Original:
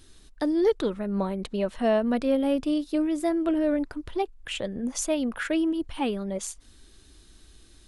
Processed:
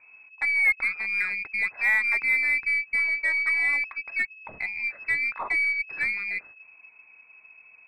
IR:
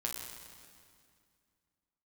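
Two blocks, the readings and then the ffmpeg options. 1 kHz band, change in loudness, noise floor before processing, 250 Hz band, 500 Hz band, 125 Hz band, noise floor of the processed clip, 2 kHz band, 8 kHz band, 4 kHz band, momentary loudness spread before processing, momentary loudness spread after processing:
−6.0 dB, +3.0 dB, −54 dBFS, below −30 dB, −24.5 dB, can't be measured, −54 dBFS, +18.5 dB, below −15 dB, −7.5 dB, 8 LU, 8 LU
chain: -af "lowpass=frequency=2200:width_type=q:width=0.5098,lowpass=frequency=2200:width_type=q:width=0.6013,lowpass=frequency=2200:width_type=q:width=0.9,lowpass=frequency=2200:width_type=q:width=2.563,afreqshift=-2600,aeval=exprs='0.237*(cos(1*acos(clip(val(0)/0.237,-1,1)))-cos(1*PI/2))+0.00473*(cos(8*acos(clip(val(0)/0.237,-1,1)))-cos(8*PI/2))':channel_layout=same"

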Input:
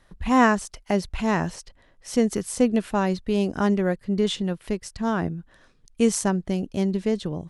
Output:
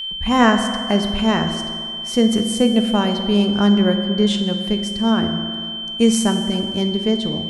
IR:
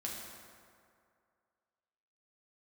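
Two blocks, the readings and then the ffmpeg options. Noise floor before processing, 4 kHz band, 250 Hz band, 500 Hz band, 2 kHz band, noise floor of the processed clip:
−59 dBFS, +17.5 dB, +7.0 dB, +4.0 dB, +4.0 dB, −28 dBFS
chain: -filter_complex "[0:a]aeval=exprs='val(0)+0.0398*sin(2*PI*3100*n/s)':channel_layout=same,asplit=2[link_01][link_02];[1:a]atrim=start_sample=2205[link_03];[link_02][link_03]afir=irnorm=-1:irlink=0,volume=-0.5dB[link_04];[link_01][link_04]amix=inputs=2:normalize=0,volume=-1dB"

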